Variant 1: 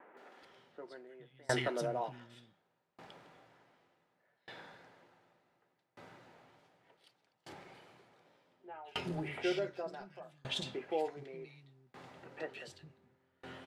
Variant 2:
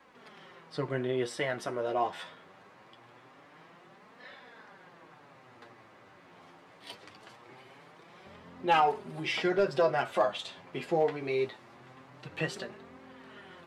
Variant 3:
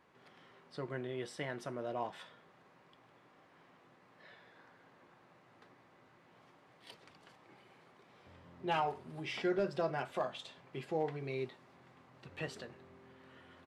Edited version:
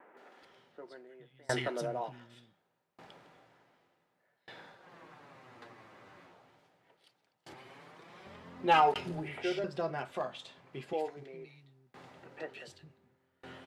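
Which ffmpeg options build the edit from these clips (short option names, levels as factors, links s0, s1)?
-filter_complex "[1:a]asplit=2[s0][s1];[0:a]asplit=4[s2][s3][s4][s5];[s2]atrim=end=4.94[s6];[s0]atrim=start=4.7:end=6.46[s7];[s3]atrim=start=6.22:end=7.542[s8];[s1]atrim=start=7.538:end=8.942[s9];[s4]atrim=start=8.938:end=9.642[s10];[2:a]atrim=start=9.638:end=10.932[s11];[s5]atrim=start=10.928[s12];[s6][s7]acrossfade=d=0.24:c1=tri:c2=tri[s13];[s13][s8]acrossfade=d=0.24:c1=tri:c2=tri[s14];[s14][s9]acrossfade=d=0.004:c1=hsin:c2=hsin[s15];[s15][s10]acrossfade=d=0.004:c1=hsin:c2=hsin[s16];[s16][s11]acrossfade=d=0.004:c1=hsin:c2=hsin[s17];[s17][s12]acrossfade=d=0.004:c1=hsin:c2=hsin"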